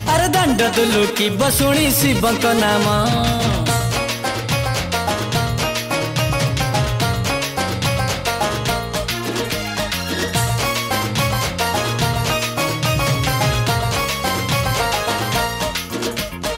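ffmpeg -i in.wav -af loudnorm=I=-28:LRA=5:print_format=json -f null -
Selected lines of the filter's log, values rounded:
"input_i" : "-18.4",
"input_tp" : "-4.7",
"input_lra" : "3.7",
"input_thresh" : "-28.4",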